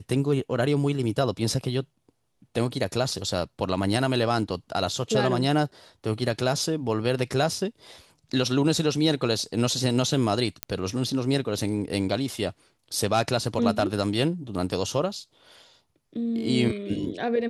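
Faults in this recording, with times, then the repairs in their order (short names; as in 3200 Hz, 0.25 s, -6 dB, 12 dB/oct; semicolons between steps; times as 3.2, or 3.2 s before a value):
10.63 pop -9 dBFS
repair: de-click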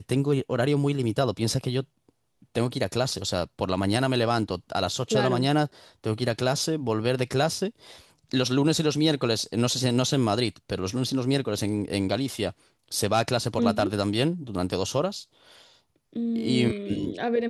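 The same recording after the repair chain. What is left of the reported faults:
none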